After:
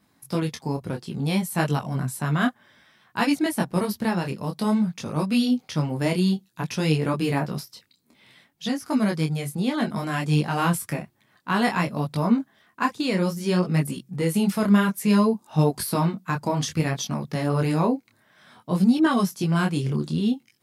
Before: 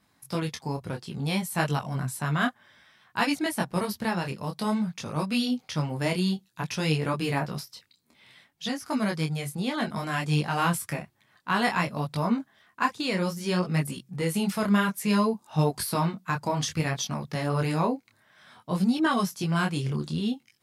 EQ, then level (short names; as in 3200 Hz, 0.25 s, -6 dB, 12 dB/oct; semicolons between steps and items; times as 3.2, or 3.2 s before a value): bell 270 Hz +6 dB 2.1 oct; high shelf 12000 Hz +5.5 dB; 0.0 dB